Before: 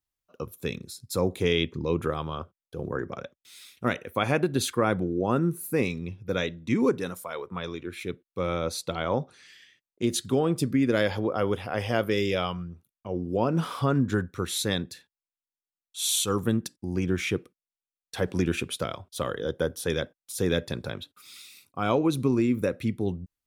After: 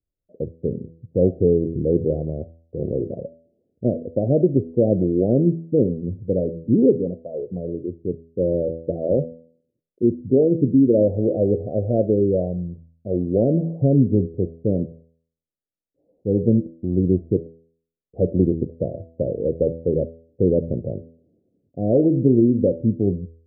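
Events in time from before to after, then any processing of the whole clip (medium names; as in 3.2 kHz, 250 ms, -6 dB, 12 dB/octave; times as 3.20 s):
8.25–11.01 s: resonances exaggerated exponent 1.5
whole clip: steep low-pass 640 Hz 72 dB/octave; de-hum 82.29 Hz, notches 11; trim +8.5 dB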